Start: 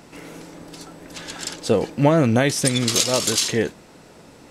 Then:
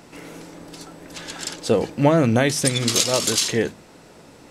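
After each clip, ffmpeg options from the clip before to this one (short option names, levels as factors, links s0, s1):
-af "bandreject=f=50:t=h:w=6,bandreject=f=100:t=h:w=6,bandreject=f=150:t=h:w=6,bandreject=f=200:t=h:w=6,bandreject=f=250:t=h:w=6"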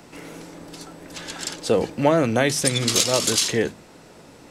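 -filter_complex "[0:a]acrossover=split=310|3500[s0][s1][s2];[s0]alimiter=limit=0.0891:level=0:latency=1[s3];[s3][s1][s2]amix=inputs=3:normalize=0,asoftclip=type=hard:threshold=0.501"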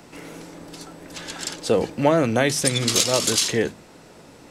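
-af anull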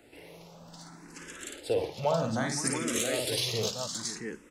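-filter_complex "[0:a]aecho=1:1:54|125|513|674:0.562|0.15|0.282|0.562,asplit=2[s0][s1];[s1]afreqshift=0.64[s2];[s0][s2]amix=inputs=2:normalize=1,volume=0.376"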